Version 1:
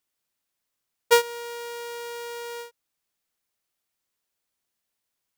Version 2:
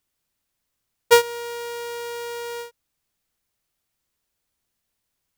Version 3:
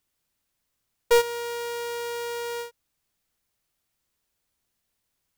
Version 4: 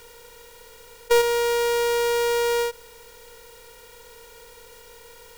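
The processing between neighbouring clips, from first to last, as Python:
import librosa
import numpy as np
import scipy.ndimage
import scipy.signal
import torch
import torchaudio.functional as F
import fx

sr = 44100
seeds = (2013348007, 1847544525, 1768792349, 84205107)

y1 = fx.low_shelf(x, sr, hz=160.0, db=12.0)
y1 = y1 * librosa.db_to_amplitude(3.0)
y2 = np.clip(10.0 ** (14.5 / 20.0) * y1, -1.0, 1.0) / 10.0 ** (14.5 / 20.0)
y3 = fx.bin_compress(y2, sr, power=0.4)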